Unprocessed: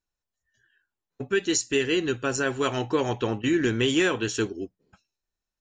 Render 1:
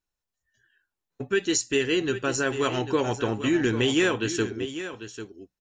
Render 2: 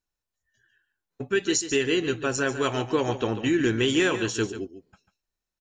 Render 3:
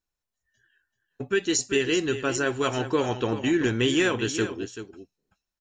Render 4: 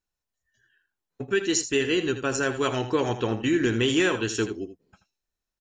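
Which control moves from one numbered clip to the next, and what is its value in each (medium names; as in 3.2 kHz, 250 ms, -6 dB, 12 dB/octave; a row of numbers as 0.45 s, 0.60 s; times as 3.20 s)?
delay, time: 795 ms, 143 ms, 384 ms, 81 ms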